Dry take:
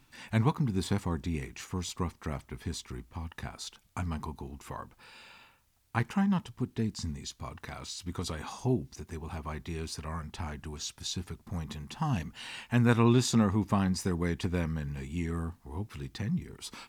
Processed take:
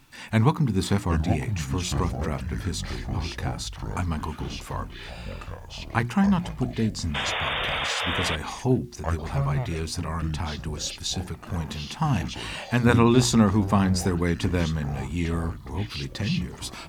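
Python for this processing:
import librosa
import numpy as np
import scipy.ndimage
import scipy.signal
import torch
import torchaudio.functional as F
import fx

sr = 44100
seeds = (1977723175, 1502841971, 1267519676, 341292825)

y = fx.echo_pitch(x, sr, ms=628, semitones=-6, count=3, db_per_echo=-6.0)
y = fx.spec_paint(y, sr, seeds[0], shape='noise', start_s=7.14, length_s=1.22, low_hz=440.0, high_hz=3700.0, level_db=-35.0)
y = fx.hum_notches(y, sr, base_hz=60, count=6)
y = y * librosa.db_to_amplitude(7.0)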